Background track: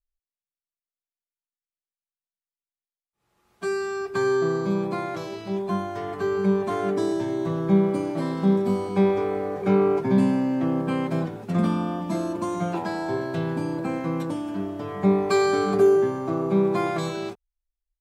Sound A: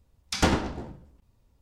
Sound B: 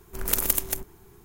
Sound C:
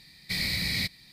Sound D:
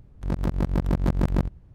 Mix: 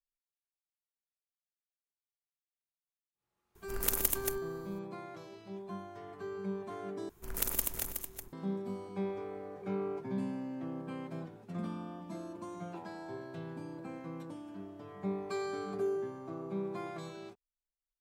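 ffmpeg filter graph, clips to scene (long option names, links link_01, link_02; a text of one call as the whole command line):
ffmpeg -i bed.wav -i cue0.wav -i cue1.wav -filter_complex "[2:a]asplit=2[link_01][link_02];[0:a]volume=-16.5dB[link_03];[link_02]aecho=1:1:370:0.422[link_04];[link_03]asplit=2[link_05][link_06];[link_05]atrim=end=7.094[link_07];[link_04]atrim=end=1.24,asetpts=PTS-STARTPTS,volume=-9dB[link_08];[link_06]atrim=start=8.326[link_09];[link_01]atrim=end=1.24,asetpts=PTS-STARTPTS,volume=-7dB,afade=type=in:duration=0.004:curve=hsin,afade=type=out:start_time=1.236:duration=0.004:curve=hsin,adelay=3550[link_10];[link_07][link_08]acrossfade=duration=0.004:curve1=hsin:curve2=hsin[link_11];[link_11][link_09]acrossfade=duration=0.004:curve1=hsin:curve2=hsin[link_12];[link_12][link_10]amix=inputs=2:normalize=0" out.wav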